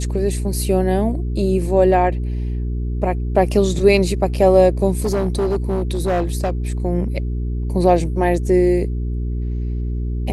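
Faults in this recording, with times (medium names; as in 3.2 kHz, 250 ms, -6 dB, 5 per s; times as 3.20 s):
hum 60 Hz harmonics 7 -22 dBFS
5.00–6.50 s: clipped -14.5 dBFS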